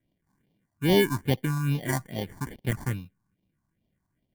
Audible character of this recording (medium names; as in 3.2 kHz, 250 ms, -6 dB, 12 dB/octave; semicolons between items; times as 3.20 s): aliases and images of a low sample rate 1.3 kHz, jitter 0%; phasing stages 4, 2.4 Hz, lowest notch 470–1400 Hz